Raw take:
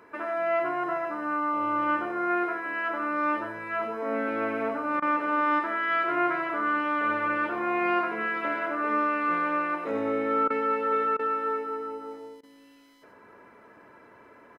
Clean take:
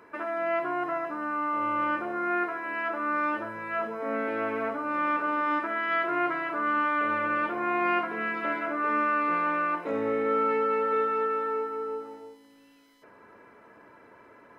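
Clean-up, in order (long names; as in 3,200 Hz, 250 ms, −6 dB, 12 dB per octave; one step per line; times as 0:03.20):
repair the gap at 0:05.00/0:10.48/0:11.17/0:12.41, 21 ms
echo removal 94 ms −7.5 dB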